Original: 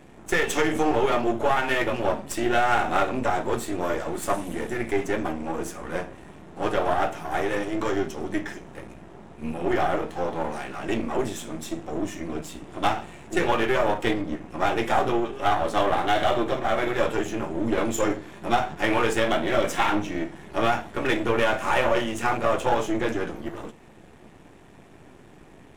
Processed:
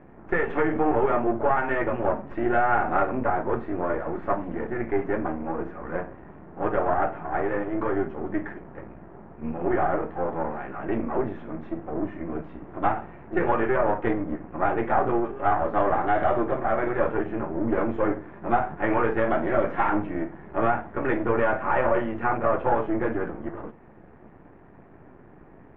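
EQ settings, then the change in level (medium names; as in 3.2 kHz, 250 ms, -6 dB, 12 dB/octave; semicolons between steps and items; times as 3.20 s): low-pass 1.8 kHz 24 dB/octave; 0.0 dB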